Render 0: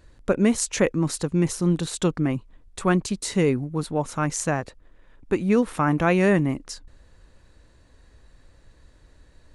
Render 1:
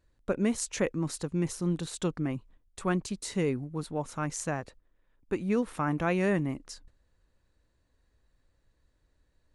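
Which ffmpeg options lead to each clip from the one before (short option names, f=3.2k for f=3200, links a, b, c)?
-af "agate=range=-9dB:threshold=-44dB:ratio=16:detection=peak,volume=-8dB"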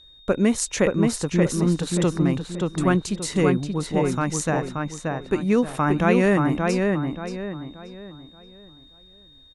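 -filter_complex "[0:a]aeval=exprs='val(0)+0.00158*sin(2*PI*3700*n/s)':c=same,asplit=2[a][b];[b]adelay=579,lowpass=f=2.8k:p=1,volume=-3dB,asplit=2[c][d];[d]adelay=579,lowpass=f=2.8k:p=1,volume=0.36,asplit=2[e][f];[f]adelay=579,lowpass=f=2.8k:p=1,volume=0.36,asplit=2[g][h];[h]adelay=579,lowpass=f=2.8k:p=1,volume=0.36,asplit=2[i][j];[j]adelay=579,lowpass=f=2.8k:p=1,volume=0.36[k];[c][e][g][i][k]amix=inputs=5:normalize=0[l];[a][l]amix=inputs=2:normalize=0,volume=8dB"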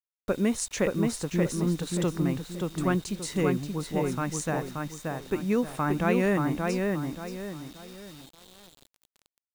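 -af "acrusher=bits=6:mix=0:aa=0.000001,volume=-6dB"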